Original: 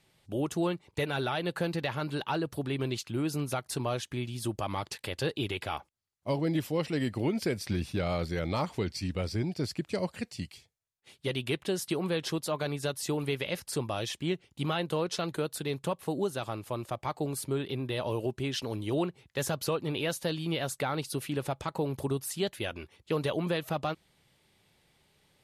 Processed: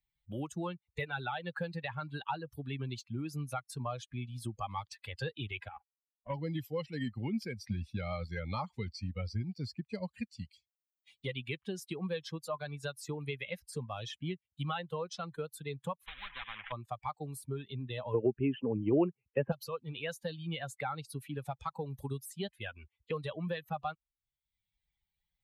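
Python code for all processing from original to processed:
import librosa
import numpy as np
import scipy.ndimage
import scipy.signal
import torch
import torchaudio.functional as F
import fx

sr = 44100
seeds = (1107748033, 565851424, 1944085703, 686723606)

y = fx.chain(x, sr, fx.cvsd(bps=16000),
    fx.level_steps(step_db=14), at=(5.68, 6.34))
y = fx.chain(y, sr, fx.cvsd(bps=16000),
    fx.spectral_comp(ratio=10.0), at=(16.06, 16.72))
y = fx.chain(y, sr, fx.ellip_lowpass(hz=2800.0, order=4, stop_db=50),
    fx.peak_eq(hz=350.0, db=14.5, octaves=3.0), at=(18.14, 19.52))
y = fx.bin_expand(y, sr, power=2.0)
y = fx.high_shelf(y, sr, hz=2800.0, db=-9.5)
y = fx.band_squash(y, sr, depth_pct=70)
y = y * librosa.db_to_amplitude(3.5)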